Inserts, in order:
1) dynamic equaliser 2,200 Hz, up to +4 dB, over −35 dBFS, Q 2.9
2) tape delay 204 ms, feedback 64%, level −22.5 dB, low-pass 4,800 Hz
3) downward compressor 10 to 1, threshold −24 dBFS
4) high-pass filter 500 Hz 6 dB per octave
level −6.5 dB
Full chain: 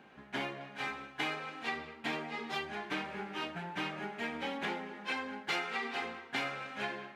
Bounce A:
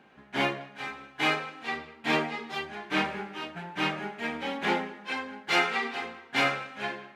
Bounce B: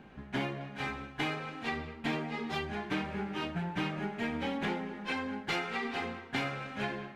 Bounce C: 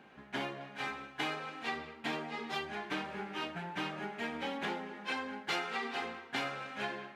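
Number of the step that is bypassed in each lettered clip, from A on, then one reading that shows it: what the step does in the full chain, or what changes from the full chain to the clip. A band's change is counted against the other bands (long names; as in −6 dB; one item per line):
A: 3, average gain reduction 4.0 dB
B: 4, 125 Hz band +10.0 dB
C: 1, 2 kHz band −1.5 dB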